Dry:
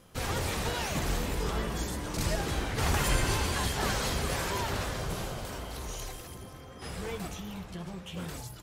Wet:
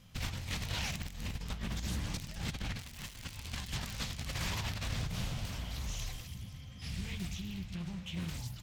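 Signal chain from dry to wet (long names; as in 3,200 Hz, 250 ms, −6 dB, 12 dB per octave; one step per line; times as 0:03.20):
graphic EQ with 15 bands 100 Hz +3 dB, 400 Hz −8 dB, 10,000 Hz −9 dB
wrap-around overflow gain 21 dB
flat-topped bell 690 Hz −9 dB 2.8 octaves, from 0:06.23 −15.5 dB, from 0:07.72 −9 dB
compressor whose output falls as the input rises −35 dBFS, ratio −0.5
highs frequency-modulated by the lows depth 0.56 ms
level −2 dB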